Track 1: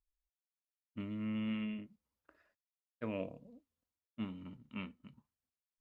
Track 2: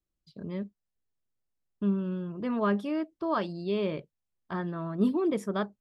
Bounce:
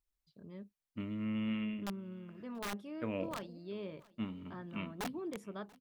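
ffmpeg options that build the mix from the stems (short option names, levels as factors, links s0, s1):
-filter_complex "[0:a]volume=1.19,asplit=2[s0][s1];[s1]volume=0.075[s2];[1:a]aeval=exprs='(mod(9.44*val(0)+1,2)-1)/9.44':c=same,volume=0.2,asplit=2[s3][s4];[s4]volume=0.0668[s5];[s2][s5]amix=inputs=2:normalize=0,aecho=0:1:685|1370|2055|2740:1|0.25|0.0625|0.0156[s6];[s0][s3][s6]amix=inputs=3:normalize=0"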